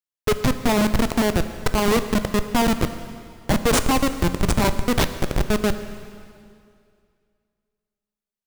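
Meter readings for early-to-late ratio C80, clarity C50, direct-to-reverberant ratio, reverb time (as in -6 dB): 11.5 dB, 11.0 dB, 9.5 dB, 2.3 s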